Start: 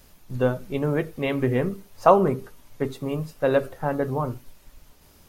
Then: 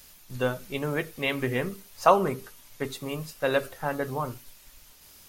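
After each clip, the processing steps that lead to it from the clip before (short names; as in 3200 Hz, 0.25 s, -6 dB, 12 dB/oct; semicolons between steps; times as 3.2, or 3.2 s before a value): tilt shelf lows -7 dB, about 1300 Hz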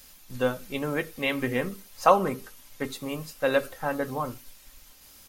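comb 3.8 ms, depth 32%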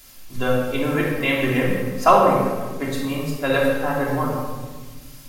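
shoebox room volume 1500 m³, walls mixed, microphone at 3.1 m; gain +1.5 dB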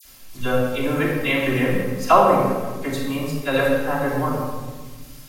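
dispersion lows, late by 48 ms, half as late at 2300 Hz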